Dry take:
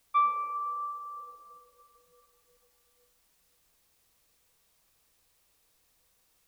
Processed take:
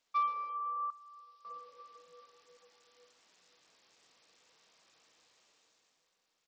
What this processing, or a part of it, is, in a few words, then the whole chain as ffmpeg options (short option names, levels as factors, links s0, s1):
Bluetooth headset: -filter_complex "[0:a]asettb=1/sr,asplit=3[s0][s1][s2];[s0]atrim=end=0.904[s3];[s1]atrim=start=0.9:end=1.45,asetpts=PTS-STARTPTS,afade=t=in:d=0.004:c=qsin,afade=t=out:st=0.546:d=0.004:c=qsin,aderivative[s4];[s2]atrim=start=1.446[s5];[s3][s4]acrossfade=d=0.004:c1=hsin:c2=qsin[s6];[s6][s5]acrossfade=d=0.004:c1=qsin:c2=hsin,highpass=240,dynaudnorm=f=240:g=9:m=4.73,aresample=16000,aresample=44100,volume=0.473" -ar 44100 -c:a sbc -b:a 64k